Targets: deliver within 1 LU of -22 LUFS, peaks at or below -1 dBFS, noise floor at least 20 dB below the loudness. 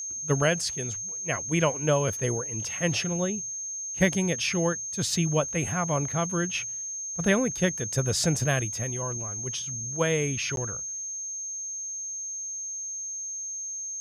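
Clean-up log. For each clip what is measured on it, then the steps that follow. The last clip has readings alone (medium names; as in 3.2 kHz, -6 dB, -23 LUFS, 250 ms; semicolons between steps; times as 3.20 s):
dropouts 1; longest dropout 12 ms; steady tone 6.4 kHz; tone level -32 dBFS; loudness -27.5 LUFS; peak level -10.0 dBFS; loudness target -22.0 LUFS
-> interpolate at 10.56 s, 12 ms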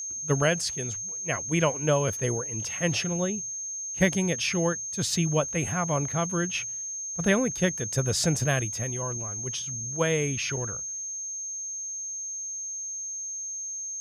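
dropouts 0; steady tone 6.4 kHz; tone level -32 dBFS
-> band-stop 6.4 kHz, Q 30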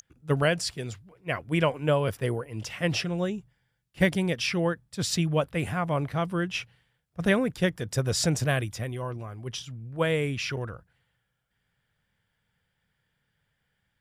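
steady tone not found; loudness -28.0 LUFS; peak level -10.5 dBFS; loudness target -22.0 LUFS
-> trim +6 dB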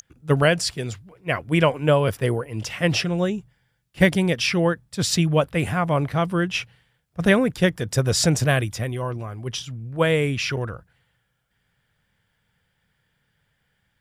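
loudness -22.5 LUFS; peak level -4.5 dBFS; noise floor -72 dBFS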